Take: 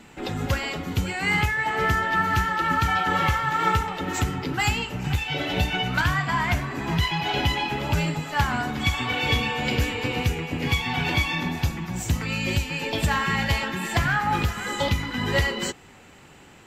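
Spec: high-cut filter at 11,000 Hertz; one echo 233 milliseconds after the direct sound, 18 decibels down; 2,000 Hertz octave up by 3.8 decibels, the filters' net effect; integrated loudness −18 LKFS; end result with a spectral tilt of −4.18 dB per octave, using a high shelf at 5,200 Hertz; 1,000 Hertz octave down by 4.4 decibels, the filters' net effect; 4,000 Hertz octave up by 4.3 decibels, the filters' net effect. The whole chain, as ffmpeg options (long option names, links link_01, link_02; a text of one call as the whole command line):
ffmpeg -i in.wav -af "lowpass=11000,equalizer=frequency=1000:width_type=o:gain=-8.5,equalizer=frequency=2000:width_type=o:gain=6,equalizer=frequency=4000:width_type=o:gain=5.5,highshelf=frequency=5200:gain=-4,aecho=1:1:233:0.126,volume=4.5dB" out.wav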